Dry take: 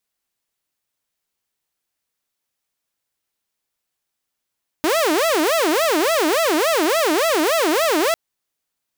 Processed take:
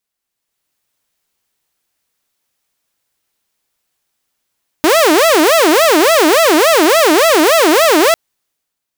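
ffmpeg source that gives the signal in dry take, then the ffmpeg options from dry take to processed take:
-f lavfi -i "aevalsrc='0.224*(2*mod((485*t-184/(2*PI*3.5)*sin(2*PI*3.5*t)),1)-1)':d=3.3:s=44100"
-af "dynaudnorm=f=120:g=9:m=9dB"

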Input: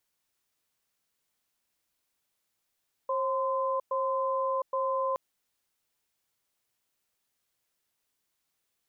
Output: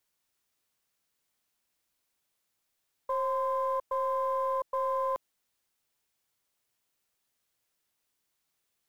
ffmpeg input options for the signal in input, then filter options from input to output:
-f lavfi -i "aevalsrc='0.0355*(sin(2*PI*535*t)+sin(2*PI*1030*t))*clip(min(mod(t,0.82),0.71-mod(t,0.82))/0.005,0,1)':d=2.07:s=44100"
-filter_complex "[0:a]acrossover=split=650[a][b];[a]aeval=exprs='clip(val(0),-1,0.0133)':c=same[c];[c][b]amix=inputs=2:normalize=0,acrusher=bits=9:mode=log:mix=0:aa=0.000001"

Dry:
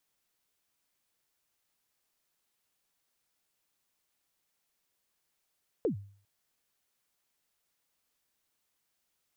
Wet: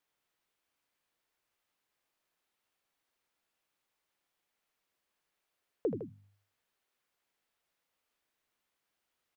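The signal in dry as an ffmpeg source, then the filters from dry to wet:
-f lavfi -i "aevalsrc='0.0708*pow(10,-3*t/0.49)*sin(2*PI*(520*0.108/log(100/520)*(exp(log(100/520)*min(t,0.108)/0.108)-1)+100*max(t-0.108,0)))':d=0.4:s=44100"
-filter_complex "[0:a]bass=f=250:g=-4,treble=f=4k:g=-9,bandreject=f=50:t=h:w=6,bandreject=f=100:t=h:w=6,bandreject=f=150:t=h:w=6,bandreject=f=200:t=h:w=6,bandreject=f=250:t=h:w=6,asplit=2[a][b];[b]aecho=0:1:78.72|157.4:0.398|0.282[c];[a][c]amix=inputs=2:normalize=0"

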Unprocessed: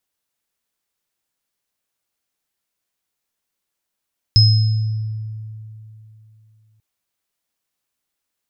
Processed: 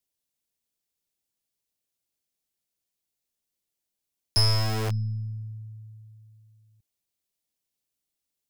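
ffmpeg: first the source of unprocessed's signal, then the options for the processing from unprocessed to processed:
-f lavfi -i "aevalsrc='0.398*pow(10,-3*t/3.08)*sin(2*PI*109*t)+0.316*pow(10,-3*t/0.9)*sin(2*PI*5130*t)':d=2.44:s=44100"
-filter_complex "[0:a]equalizer=f=1.3k:t=o:w=1.7:g=-10.5,aeval=exprs='(tanh(5.01*val(0)+0.7)-tanh(0.7))/5.01':c=same,acrossover=split=110|680|1300[a][b][c][d];[b]aeval=exprs='(mod(23.7*val(0)+1,2)-1)/23.7':c=same[e];[a][e][c][d]amix=inputs=4:normalize=0"

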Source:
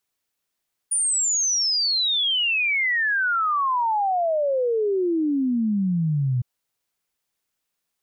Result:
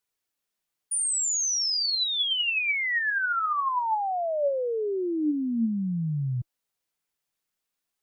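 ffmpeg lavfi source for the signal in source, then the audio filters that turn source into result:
-f lavfi -i "aevalsrc='0.112*clip(min(t,5.51-t)/0.01,0,1)*sin(2*PI*9600*5.51/log(120/9600)*(exp(log(120/9600)*t/5.51)-1))':d=5.51:s=44100"
-af "flanger=delay=2:depth=5:regen=70:speed=0.49:shape=sinusoidal"

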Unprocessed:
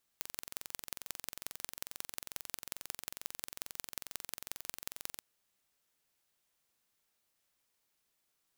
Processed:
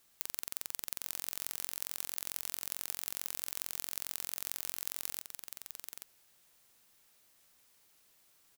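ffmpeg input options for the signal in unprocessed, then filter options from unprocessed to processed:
-f lavfi -i "aevalsrc='0.335*eq(mod(n,1978),0)*(0.5+0.5*eq(mod(n,7912),0))':d=5:s=44100"
-filter_complex "[0:a]highshelf=f=7.1k:g=2.5,aeval=exprs='0.422*(cos(1*acos(clip(val(0)/0.422,-1,1)))-cos(1*PI/2))+0.188*(cos(5*acos(clip(val(0)/0.422,-1,1)))-cos(5*PI/2))':c=same,asplit=2[a][b];[b]aecho=0:1:832:0.473[c];[a][c]amix=inputs=2:normalize=0"

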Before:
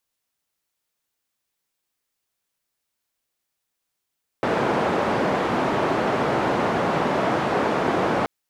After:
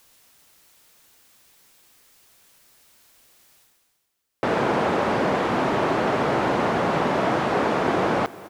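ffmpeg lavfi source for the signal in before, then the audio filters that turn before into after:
-f lavfi -i "anoisesrc=c=white:d=3.83:r=44100:seed=1,highpass=f=150,lowpass=f=850,volume=-2.7dB"
-af "areverse,acompressor=mode=upward:threshold=-37dB:ratio=2.5,areverse,aecho=1:1:395|790|1185|1580:0.1|0.05|0.025|0.0125"

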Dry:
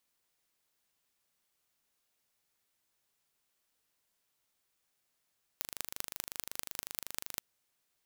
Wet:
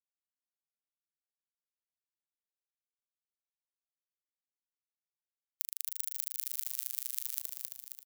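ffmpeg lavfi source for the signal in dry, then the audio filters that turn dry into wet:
-f lavfi -i "aevalsrc='0.447*eq(mod(n,1736),0)*(0.5+0.5*eq(mod(n,8680),0))':d=1.81:s=44100"
-filter_complex "[0:a]afftfilt=real='re*gte(hypot(re,im),0.00316)':imag='im*gte(hypot(re,im),0.00316)':win_size=1024:overlap=0.75,aderivative,asplit=2[a][b];[b]asplit=7[c][d][e][f][g][h][i];[c]adelay=268,afreqshift=45,volume=-3.5dB[j];[d]adelay=536,afreqshift=90,volume=-8.9dB[k];[e]adelay=804,afreqshift=135,volume=-14.2dB[l];[f]adelay=1072,afreqshift=180,volume=-19.6dB[m];[g]adelay=1340,afreqshift=225,volume=-24.9dB[n];[h]adelay=1608,afreqshift=270,volume=-30.3dB[o];[i]adelay=1876,afreqshift=315,volume=-35.6dB[p];[j][k][l][m][n][o][p]amix=inputs=7:normalize=0[q];[a][q]amix=inputs=2:normalize=0"

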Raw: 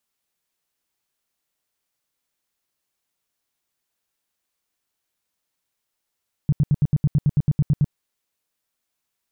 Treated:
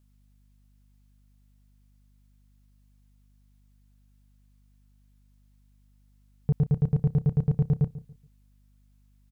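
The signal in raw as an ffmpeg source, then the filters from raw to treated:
-f lavfi -i "aevalsrc='0.224*sin(2*PI*146*mod(t,0.11))*lt(mod(t,0.11),5/146)':d=1.43:s=44100"
-filter_complex "[0:a]asoftclip=type=tanh:threshold=-16.5dB,aeval=exprs='val(0)+0.000891*(sin(2*PI*50*n/s)+sin(2*PI*2*50*n/s)/2+sin(2*PI*3*50*n/s)/3+sin(2*PI*4*50*n/s)/4+sin(2*PI*5*50*n/s)/5)':c=same,asplit=2[a][b];[b]adelay=141,lowpass=f=820:p=1,volume=-15dB,asplit=2[c][d];[d]adelay=141,lowpass=f=820:p=1,volume=0.3,asplit=2[e][f];[f]adelay=141,lowpass=f=820:p=1,volume=0.3[g];[a][c][e][g]amix=inputs=4:normalize=0"

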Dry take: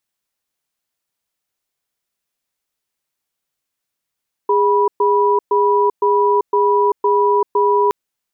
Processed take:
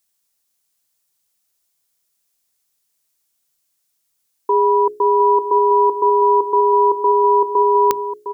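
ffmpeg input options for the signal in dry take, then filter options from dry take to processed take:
-f lavfi -i "aevalsrc='0.2*(sin(2*PI*410*t)+sin(2*PI*979*t))*clip(min(mod(t,0.51),0.39-mod(t,0.51))/0.005,0,1)':d=3.42:s=44100"
-filter_complex "[0:a]bass=f=250:g=2,treble=f=4k:g=11,bandreject=f=60:t=h:w=6,bandreject=f=120:t=h:w=6,bandreject=f=180:t=h:w=6,bandreject=f=240:t=h:w=6,bandreject=f=300:t=h:w=6,bandreject=f=360:t=h:w=6,bandreject=f=420:t=h:w=6,asplit=2[a][b];[b]aecho=0:1:708:0.335[c];[a][c]amix=inputs=2:normalize=0"

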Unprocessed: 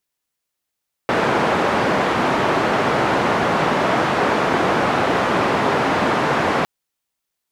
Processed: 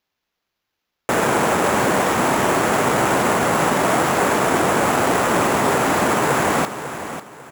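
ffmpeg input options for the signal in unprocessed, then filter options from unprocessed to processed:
-f lavfi -i "anoisesrc=c=white:d=5.56:r=44100:seed=1,highpass=f=140,lowpass=f=1100,volume=-0.1dB"
-filter_complex "[0:a]asplit=2[a][b];[b]aecho=0:1:547|1094|1641:0.282|0.0817|0.0237[c];[a][c]amix=inputs=2:normalize=0,acrusher=samples=5:mix=1:aa=0.000001"

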